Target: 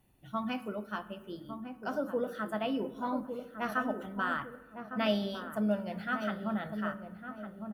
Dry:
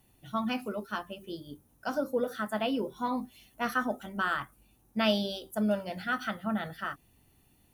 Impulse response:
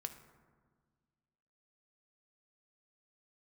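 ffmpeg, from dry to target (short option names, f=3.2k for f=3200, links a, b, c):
-filter_complex "[0:a]asplit=2[a][b];[b]adelay=1156,lowpass=f=860:p=1,volume=-6.5dB,asplit=2[c][d];[d]adelay=1156,lowpass=f=860:p=1,volume=0.4,asplit=2[e][f];[f]adelay=1156,lowpass=f=860:p=1,volume=0.4,asplit=2[g][h];[h]adelay=1156,lowpass=f=860:p=1,volume=0.4,asplit=2[i][j];[j]adelay=1156,lowpass=f=860:p=1,volume=0.4[k];[a][c][e][g][i][k]amix=inputs=6:normalize=0,asplit=2[l][m];[1:a]atrim=start_sample=2205,asetrate=57330,aresample=44100,lowpass=3.3k[n];[m][n]afir=irnorm=-1:irlink=0,volume=4.5dB[o];[l][o]amix=inputs=2:normalize=0,volume=-8dB"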